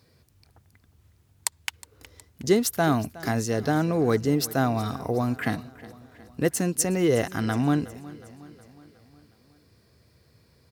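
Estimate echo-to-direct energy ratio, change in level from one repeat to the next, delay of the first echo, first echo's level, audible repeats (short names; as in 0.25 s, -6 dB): -17.5 dB, -5.0 dB, 0.365 s, -19.0 dB, 4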